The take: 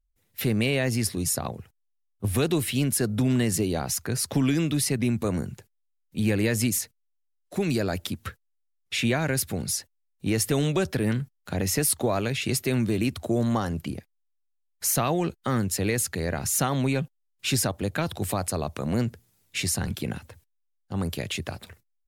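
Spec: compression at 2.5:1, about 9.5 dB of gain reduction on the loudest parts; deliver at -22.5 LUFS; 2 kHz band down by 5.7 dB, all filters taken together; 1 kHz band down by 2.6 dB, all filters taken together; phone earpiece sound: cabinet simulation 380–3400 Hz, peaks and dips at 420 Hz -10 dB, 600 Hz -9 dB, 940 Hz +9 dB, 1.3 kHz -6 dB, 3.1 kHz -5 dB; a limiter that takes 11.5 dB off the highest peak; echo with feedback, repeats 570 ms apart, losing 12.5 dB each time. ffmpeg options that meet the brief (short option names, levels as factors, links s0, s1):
-af "equalizer=f=1000:t=o:g=-3.5,equalizer=f=2000:t=o:g=-4.5,acompressor=threshold=0.0178:ratio=2.5,alimiter=level_in=2:limit=0.0631:level=0:latency=1,volume=0.501,highpass=380,equalizer=f=420:t=q:w=4:g=-10,equalizer=f=600:t=q:w=4:g=-9,equalizer=f=940:t=q:w=4:g=9,equalizer=f=1300:t=q:w=4:g=-6,equalizer=f=3100:t=q:w=4:g=-5,lowpass=f=3400:w=0.5412,lowpass=f=3400:w=1.3066,aecho=1:1:570|1140|1710:0.237|0.0569|0.0137,volume=21.1"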